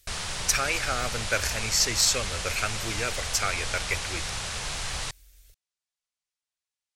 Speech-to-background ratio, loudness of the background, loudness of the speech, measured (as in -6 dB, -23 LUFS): 4.5 dB, -31.5 LUFS, -27.0 LUFS